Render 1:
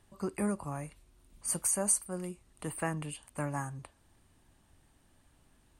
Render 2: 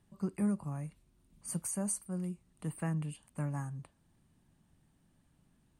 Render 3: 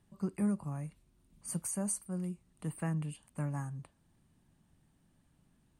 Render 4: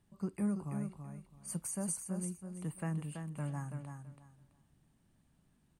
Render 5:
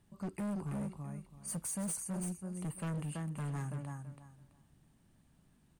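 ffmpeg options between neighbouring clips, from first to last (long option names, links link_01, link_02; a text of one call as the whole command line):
ffmpeg -i in.wav -af "equalizer=frequency=170:width=1.2:gain=13,volume=-8.5dB" out.wav
ffmpeg -i in.wav -af anull out.wav
ffmpeg -i in.wav -af "aecho=1:1:331|662|993:0.473|0.104|0.0229,volume=-2.5dB" out.wav
ffmpeg -i in.wav -af "asoftclip=type=hard:threshold=-38.5dB,volume=3.5dB" out.wav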